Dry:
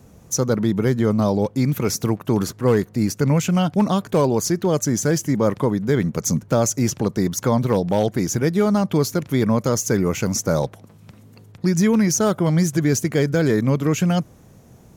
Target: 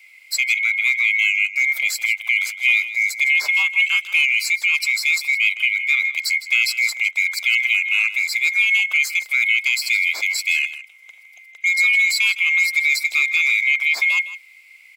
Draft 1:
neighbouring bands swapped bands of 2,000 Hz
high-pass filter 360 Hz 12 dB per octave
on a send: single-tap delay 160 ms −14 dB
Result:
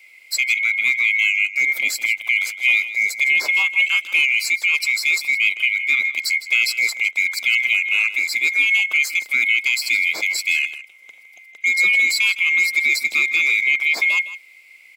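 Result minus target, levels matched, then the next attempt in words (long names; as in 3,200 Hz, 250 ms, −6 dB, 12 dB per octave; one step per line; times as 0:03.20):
500 Hz band +7.5 dB
neighbouring bands swapped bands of 2,000 Hz
high-pass filter 840 Hz 12 dB per octave
on a send: single-tap delay 160 ms −14 dB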